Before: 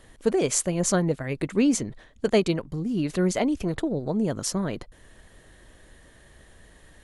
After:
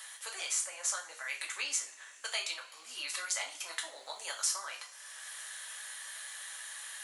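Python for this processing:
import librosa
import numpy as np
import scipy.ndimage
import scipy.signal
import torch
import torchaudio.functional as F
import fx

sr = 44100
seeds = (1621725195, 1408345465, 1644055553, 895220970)

y = scipy.signal.sosfilt(scipy.signal.butter(4, 1000.0, 'highpass', fs=sr, output='sos'), x)
y = fx.high_shelf(y, sr, hz=4300.0, db=8.0)
y = fx.rider(y, sr, range_db=4, speed_s=0.5)
y = fx.rev_double_slope(y, sr, seeds[0], early_s=0.33, late_s=2.4, knee_db=-27, drr_db=-1.0)
y = fx.band_squash(y, sr, depth_pct=70)
y = y * 10.0 ** (-8.5 / 20.0)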